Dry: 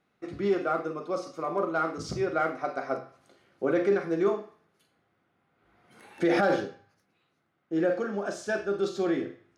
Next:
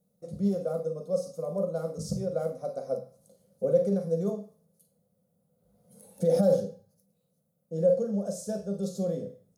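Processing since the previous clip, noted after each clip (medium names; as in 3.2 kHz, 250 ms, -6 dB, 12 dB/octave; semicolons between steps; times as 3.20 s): FFT filter 120 Hz 0 dB, 190 Hz +10 dB, 340 Hz -20 dB, 510 Hz +8 dB, 770 Hz -12 dB, 1.7 kHz -26 dB, 2.5 kHz -24 dB, 4 kHz -9 dB, 11 kHz +13 dB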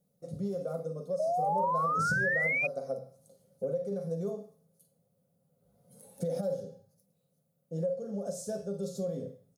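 comb 7.3 ms, depth 41%; compression 5:1, threshold -29 dBFS, peak gain reduction 12 dB; painted sound rise, 1.19–2.67 s, 610–2500 Hz -28 dBFS; trim -1.5 dB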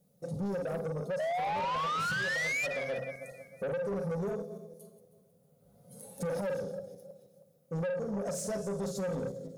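backward echo that repeats 158 ms, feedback 54%, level -13.5 dB; in parallel at 0 dB: peak limiter -29 dBFS, peak gain reduction 10 dB; on the sum: saturation -30 dBFS, distortion -10 dB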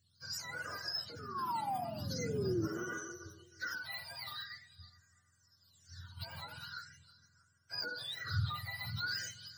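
spectrum inverted on a logarithmic axis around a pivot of 890 Hz; pre-emphasis filter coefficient 0.8; phase shifter stages 6, 0.43 Hz, lowest notch 390–4100 Hz; trim +9.5 dB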